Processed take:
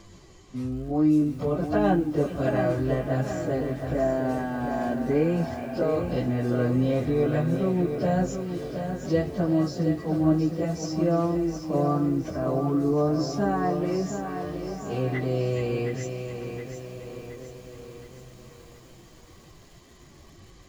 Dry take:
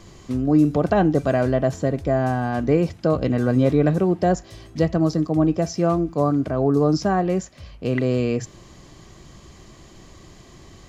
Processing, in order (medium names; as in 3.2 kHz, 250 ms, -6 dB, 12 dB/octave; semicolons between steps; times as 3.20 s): plain phase-vocoder stretch 1.9×; repeats whose band climbs or falls 420 ms, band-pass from 2.8 kHz, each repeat -0.7 oct, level -7.5 dB; bit-crushed delay 719 ms, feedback 55%, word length 8-bit, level -7.5 dB; trim -3.5 dB